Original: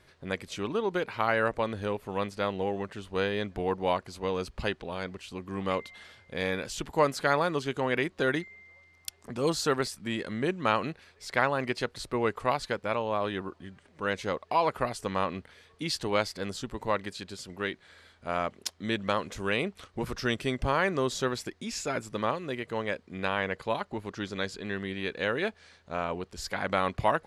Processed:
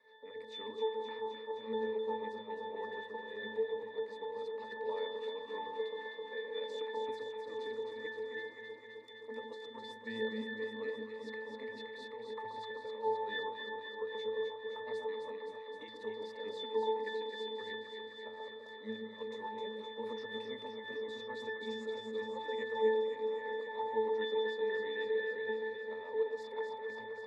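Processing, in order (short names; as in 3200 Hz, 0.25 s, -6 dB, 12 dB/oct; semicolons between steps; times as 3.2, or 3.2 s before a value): HPF 400 Hz 24 dB/oct; high shelf 5700 Hz +5.5 dB; negative-ratio compressor -36 dBFS, ratio -0.5; octave resonator A, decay 0.57 s; echo with dull and thin repeats by turns 0.13 s, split 1100 Hz, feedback 87%, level -4 dB; gain +15.5 dB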